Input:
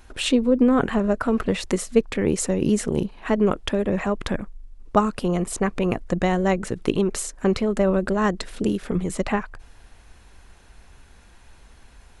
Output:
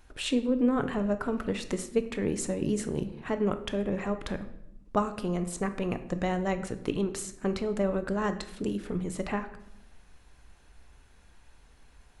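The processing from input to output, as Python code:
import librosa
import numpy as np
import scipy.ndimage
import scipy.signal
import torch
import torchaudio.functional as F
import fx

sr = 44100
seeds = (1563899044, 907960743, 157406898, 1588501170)

y = fx.room_shoebox(x, sr, seeds[0], volume_m3=250.0, walls='mixed', distance_m=0.39)
y = y * 10.0 ** (-8.5 / 20.0)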